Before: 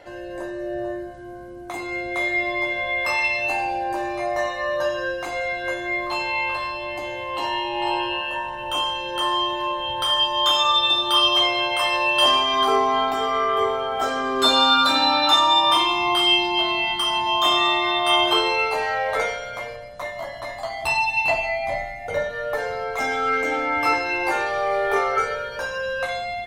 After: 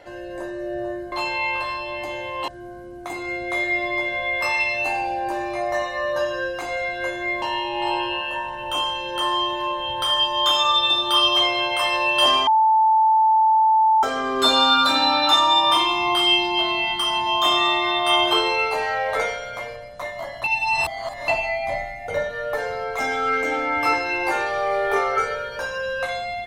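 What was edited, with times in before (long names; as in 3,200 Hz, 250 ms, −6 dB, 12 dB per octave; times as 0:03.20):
0:06.06–0:07.42: move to 0:01.12
0:12.47–0:14.03: beep over 879 Hz −13 dBFS
0:20.44–0:21.28: reverse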